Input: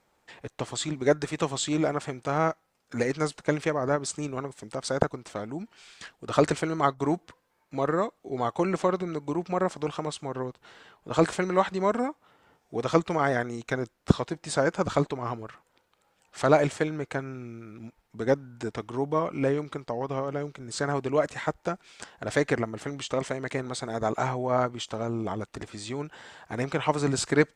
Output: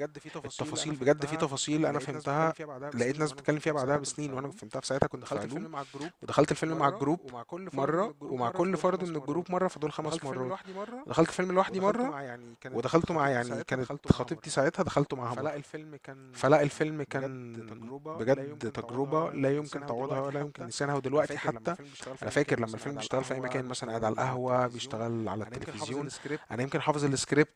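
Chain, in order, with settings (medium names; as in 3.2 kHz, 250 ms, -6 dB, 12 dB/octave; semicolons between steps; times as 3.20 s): reverse echo 1067 ms -11.5 dB; trim -2.5 dB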